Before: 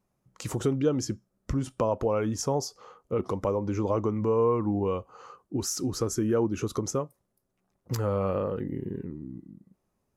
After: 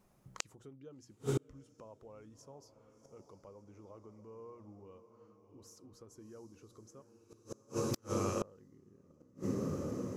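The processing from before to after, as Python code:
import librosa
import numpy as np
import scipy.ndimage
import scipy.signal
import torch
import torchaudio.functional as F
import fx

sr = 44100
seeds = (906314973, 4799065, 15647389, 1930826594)

y = fx.tone_stack(x, sr, knobs='5-5-5', at=(7.02, 8.42))
y = fx.hum_notches(y, sr, base_hz=60, count=5)
y = fx.echo_diffused(y, sr, ms=690, feedback_pct=53, wet_db=-10.5)
y = fx.gate_flip(y, sr, shuts_db=-29.0, range_db=-35)
y = y * 10.0 ** (7.5 / 20.0)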